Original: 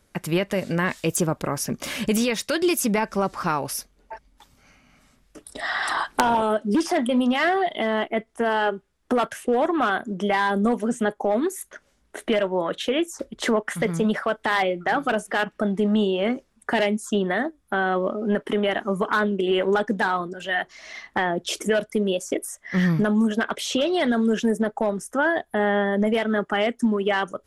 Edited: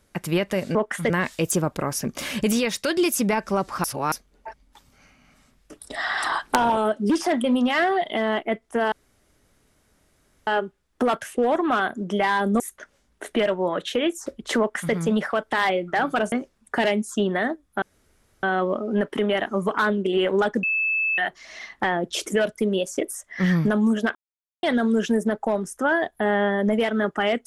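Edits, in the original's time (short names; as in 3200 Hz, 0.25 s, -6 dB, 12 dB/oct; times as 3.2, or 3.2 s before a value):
3.49–3.77 reverse
8.57 insert room tone 1.55 s
10.7–11.53 cut
13.52–13.87 copy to 0.75
15.25–16.27 cut
17.77 insert room tone 0.61 s
19.97–20.52 bleep 2620 Hz -20 dBFS
23.49–23.97 mute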